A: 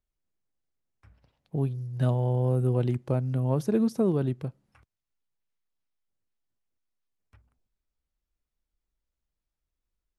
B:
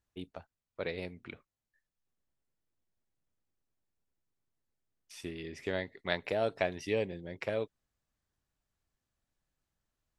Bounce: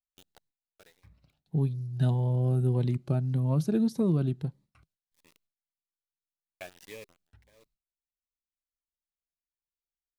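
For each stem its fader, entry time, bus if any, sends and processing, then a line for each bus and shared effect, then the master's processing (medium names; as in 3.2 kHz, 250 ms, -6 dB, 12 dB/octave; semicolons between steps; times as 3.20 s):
-1.5 dB, 0.00 s, no send, graphic EQ with 31 bands 160 Hz +7 dB, 500 Hz -5 dB, 4 kHz +7 dB
-11.5 dB, 0.00 s, muted 5.38–6.52 s, no send, tilt shelf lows -5.5 dB, about 740 Hz; bit crusher 6-bit; auto duck -22 dB, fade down 0.30 s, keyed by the first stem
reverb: none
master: gate with hold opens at -58 dBFS; Shepard-style phaser rising 1.7 Hz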